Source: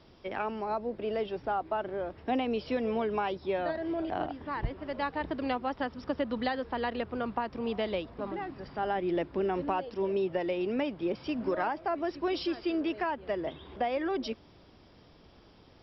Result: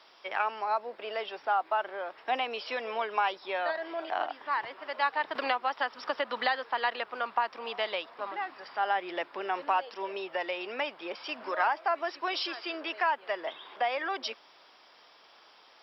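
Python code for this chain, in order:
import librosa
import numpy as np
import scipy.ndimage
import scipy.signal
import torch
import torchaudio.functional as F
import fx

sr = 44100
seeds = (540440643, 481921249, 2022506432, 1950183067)

y = scipy.signal.sosfilt(scipy.signal.cheby1(2, 1.0, 1000.0, 'highpass', fs=sr, output='sos'), x)
y = fx.band_squash(y, sr, depth_pct=70, at=(5.35, 6.48))
y = y * librosa.db_to_amplitude(7.0)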